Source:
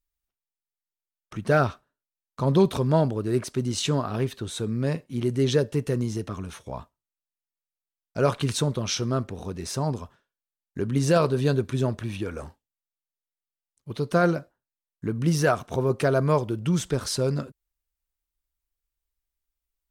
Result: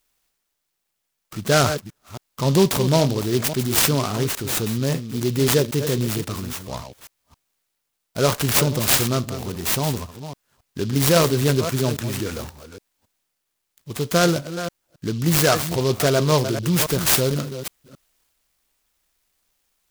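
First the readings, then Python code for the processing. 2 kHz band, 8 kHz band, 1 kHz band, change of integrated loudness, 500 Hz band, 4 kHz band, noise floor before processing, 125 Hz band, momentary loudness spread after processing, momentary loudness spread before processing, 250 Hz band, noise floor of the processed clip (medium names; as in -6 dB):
+6.5 dB, +12.0 dB, +4.0 dB, +5.0 dB, +3.5 dB, +10.0 dB, under -85 dBFS, +3.5 dB, 16 LU, 14 LU, +3.5 dB, -77 dBFS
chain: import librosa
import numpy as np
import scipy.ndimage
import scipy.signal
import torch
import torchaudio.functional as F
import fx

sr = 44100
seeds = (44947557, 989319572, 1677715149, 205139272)

y = fx.reverse_delay(x, sr, ms=272, wet_db=-11)
y = fx.high_shelf(y, sr, hz=3500.0, db=11.0)
y = fx.transient(y, sr, attack_db=-1, sustain_db=3)
y = fx.high_shelf(y, sr, hz=10000.0, db=9.5)
y = fx.noise_mod_delay(y, sr, seeds[0], noise_hz=4000.0, depth_ms=0.074)
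y = F.gain(torch.from_numpy(y), 3.0).numpy()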